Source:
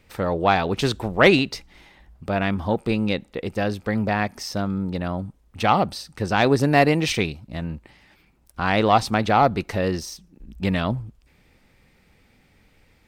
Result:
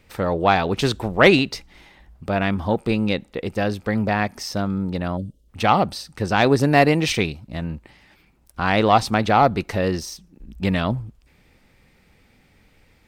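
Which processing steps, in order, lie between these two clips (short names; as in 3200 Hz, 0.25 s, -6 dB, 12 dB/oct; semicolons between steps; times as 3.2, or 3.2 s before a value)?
spectral gain 5.17–5.49, 640–2700 Hz -22 dB; gain +1.5 dB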